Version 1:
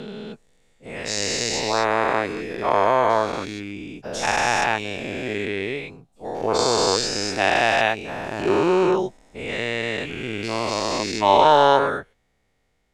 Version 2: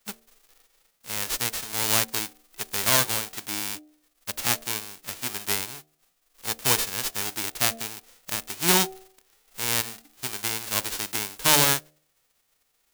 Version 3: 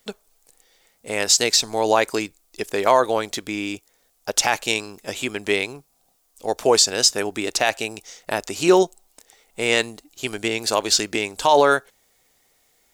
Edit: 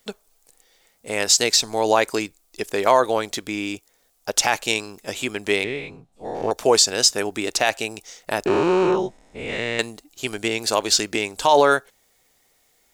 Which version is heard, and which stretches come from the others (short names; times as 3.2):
3
5.64–6.51 from 1
8.46–9.79 from 1
not used: 2